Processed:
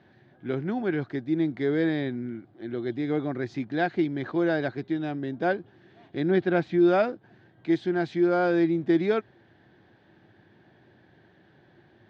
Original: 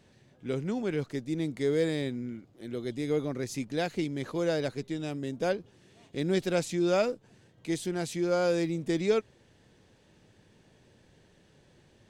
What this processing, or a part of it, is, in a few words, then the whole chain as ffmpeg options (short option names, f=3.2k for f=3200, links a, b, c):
guitar cabinet: -filter_complex "[0:a]highpass=98,equalizer=f=110:t=q:w=4:g=3,equalizer=f=340:t=q:w=4:g=7,equalizer=f=480:t=q:w=4:g=-6,equalizer=f=740:t=q:w=4:g=7,equalizer=f=1.6k:t=q:w=4:g=8,equalizer=f=2.7k:t=q:w=4:g=-6,lowpass=f=3.7k:w=0.5412,lowpass=f=3.7k:w=1.3066,asettb=1/sr,asplit=3[a][b][c];[a]atrim=end=6.314[d];[b]atrim=start=6.31:end=6.79,asetpts=PTS-STARTPTS,afade=t=in:d=0.004:c=qsin,afade=t=out:st=0.476:d=0.004:c=qsin,bass=f=250:g=2,treble=f=4k:g=-9[e];[c]atrim=start=6.786[f];[d][e]acrossfade=d=0.004:c1=hsin:c2=qsin[g];[g][f]acrossfade=d=0.004:c1=qsin:c2=hsin,volume=2dB"